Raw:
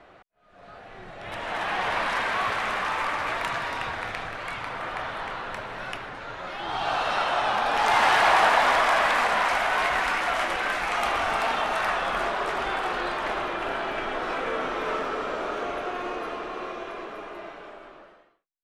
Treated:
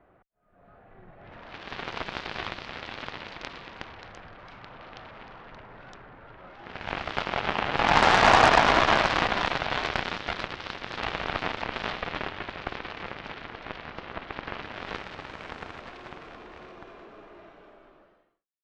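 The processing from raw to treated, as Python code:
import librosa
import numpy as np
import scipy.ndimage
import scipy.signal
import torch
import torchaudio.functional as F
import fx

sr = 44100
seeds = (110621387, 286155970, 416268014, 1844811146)

y = fx.low_shelf(x, sr, hz=380.0, db=10.0)
y = fx.filter_sweep_lowpass(y, sr, from_hz=1900.0, to_hz=5800.0, start_s=14.41, end_s=15.46, q=0.82)
y = fx.cheby_harmonics(y, sr, harmonics=(2, 7), levels_db=(-7, -15), full_scale_db=-6.5)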